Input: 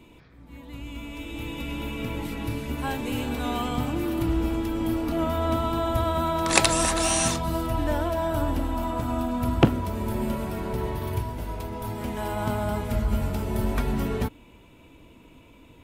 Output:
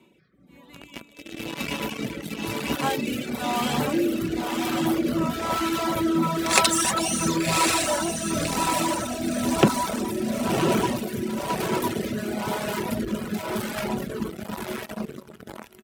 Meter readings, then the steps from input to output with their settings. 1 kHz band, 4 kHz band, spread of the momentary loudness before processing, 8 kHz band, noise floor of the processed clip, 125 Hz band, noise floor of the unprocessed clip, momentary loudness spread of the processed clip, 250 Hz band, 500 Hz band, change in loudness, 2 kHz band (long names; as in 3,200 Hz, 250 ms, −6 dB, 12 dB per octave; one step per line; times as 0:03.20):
+2.5 dB, +4.0 dB, 11 LU, +3.0 dB, −52 dBFS, −4.0 dB, −52 dBFS, 12 LU, +2.5 dB, +1.5 dB, +1.5 dB, +3.5 dB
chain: fade-out on the ending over 4.20 s
comb filter 5.3 ms, depth 46%
feedback delay with all-pass diffusion 1,078 ms, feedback 49%, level −3 dB
in parallel at −5 dB: fuzz pedal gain 36 dB, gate −31 dBFS
on the sum: high-pass filter 160 Hz 12 dB per octave
rotating-speaker cabinet horn 1 Hz
reverb reduction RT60 1.3 s
level −1.5 dB